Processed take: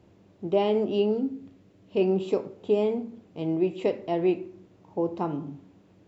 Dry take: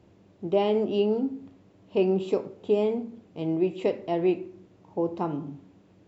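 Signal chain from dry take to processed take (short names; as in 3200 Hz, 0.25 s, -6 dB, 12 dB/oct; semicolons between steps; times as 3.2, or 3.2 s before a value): 1.11–2.01 bell 900 Hz -6 dB 0.93 oct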